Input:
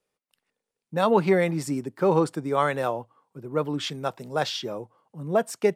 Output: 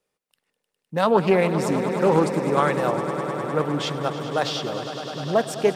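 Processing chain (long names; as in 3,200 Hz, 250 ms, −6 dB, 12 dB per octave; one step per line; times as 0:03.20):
echo that builds up and dies away 102 ms, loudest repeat 5, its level −13.5 dB
highs frequency-modulated by the lows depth 0.19 ms
level +2 dB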